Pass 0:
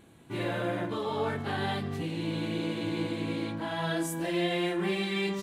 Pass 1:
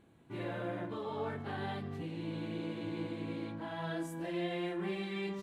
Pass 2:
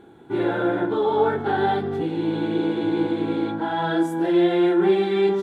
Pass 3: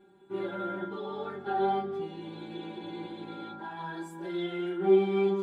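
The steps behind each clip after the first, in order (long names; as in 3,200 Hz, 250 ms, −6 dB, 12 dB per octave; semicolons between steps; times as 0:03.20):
high-shelf EQ 3,400 Hz −9.5 dB; level −7 dB
hollow resonant body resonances 390/810/1,400/3,400 Hz, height 15 dB, ringing for 20 ms; level +7 dB
stiff-string resonator 190 Hz, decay 0.22 s, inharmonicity 0.002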